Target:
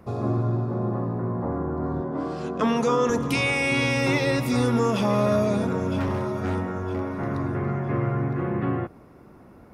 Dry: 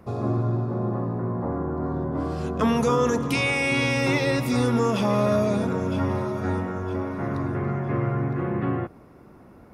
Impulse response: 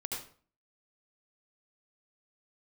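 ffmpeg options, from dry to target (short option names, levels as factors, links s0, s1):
-filter_complex "[0:a]asettb=1/sr,asplit=3[s0][s1][s2];[s0]atrim=end=2.014[s3];[s1]atrim=start=2.01:end=3.1,asetpts=PTS-STARTPTS,afade=t=in:d=0.004:c=qsin,afade=t=out:st=1.086:d=0.004:c=qsin,highpass=180,lowpass=7900[s4];[s2]atrim=start=3.096[s5];[s3][s4]acrossfade=d=0.004:c1=hsin:c2=qsin[s6];[s6][s5]acrossfade=d=0.004:c1=qsin:c2=hsin,asettb=1/sr,asplit=3[s7][s8][s9];[s7]atrim=end=6.004[s10];[s8]atrim=start=6:end=7.26,asetpts=PTS-STARTPTS,afade=t=in:d=0.004:c=qsin,afade=t=out:st=1.256:d=0.004:c=qsin,aeval=exprs='0.112*(abs(mod(val(0)/0.112+3,4)-2)-1)':c=same[s11];[s9]atrim=start=7.256[s12];[s10][s11]acrossfade=d=0.004:c1=hsin:c2=qsin[s13];[s13][s12]acrossfade=d=0.004:c1=qsin:c2=hsin"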